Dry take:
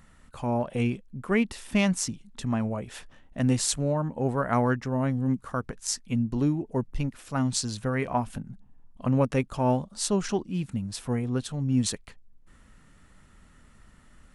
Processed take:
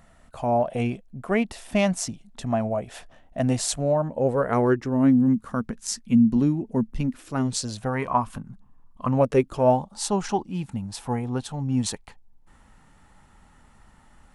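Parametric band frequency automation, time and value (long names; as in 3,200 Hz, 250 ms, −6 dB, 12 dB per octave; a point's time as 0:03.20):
parametric band +13.5 dB 0.43 octaves
0:04.00 680 Hz
0:05.32 220 Hz
0:07.02 220 Hz
0:08.11 1,100 Hz
0:09.07 1,100 Hz
0:09.48 270 Hz
0:09.75 840 Hz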